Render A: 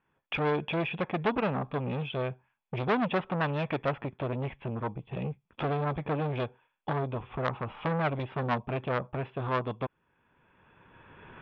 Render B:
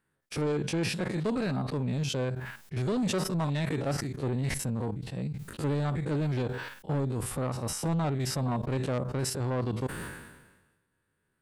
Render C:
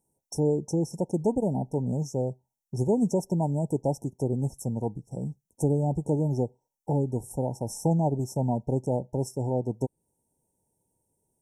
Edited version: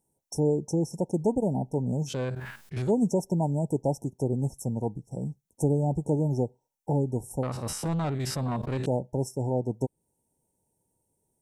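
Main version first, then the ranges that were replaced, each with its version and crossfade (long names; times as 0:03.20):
C
0:02.11–0:02.87: punch in from B, crossfade 0.10 s
0:07.43–0:08.86: punch in from B
not used: A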